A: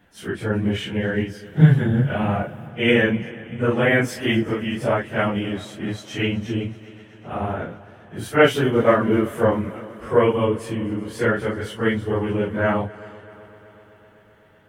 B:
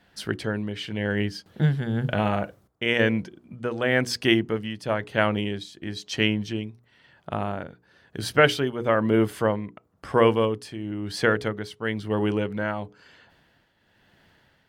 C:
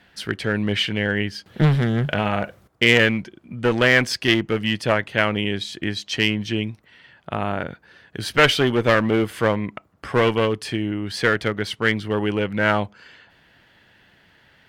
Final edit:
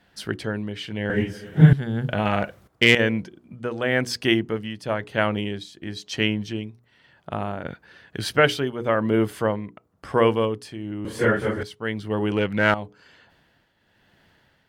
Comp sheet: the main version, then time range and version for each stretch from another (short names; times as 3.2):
B
1.1–1.73 from A
2.25–2.95 from C
7.65–8.31 from C
11.05–11.63 from A
12.32–12.74 from C